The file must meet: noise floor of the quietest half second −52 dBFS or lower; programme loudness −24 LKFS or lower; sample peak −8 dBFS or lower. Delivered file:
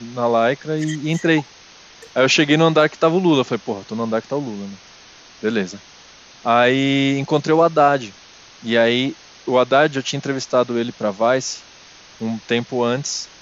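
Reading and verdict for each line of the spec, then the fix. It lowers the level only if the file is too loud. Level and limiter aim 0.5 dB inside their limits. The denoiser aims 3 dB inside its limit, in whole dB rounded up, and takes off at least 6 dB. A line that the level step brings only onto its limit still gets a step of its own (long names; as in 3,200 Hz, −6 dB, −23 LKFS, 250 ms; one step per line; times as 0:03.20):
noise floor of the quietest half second −45 dBFS: out of spec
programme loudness −18.5 LKFS: out of spec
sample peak −3.5 dBFS: out of spec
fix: broadband denoise 6 dB, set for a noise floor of −45 dBFS
level −6 dB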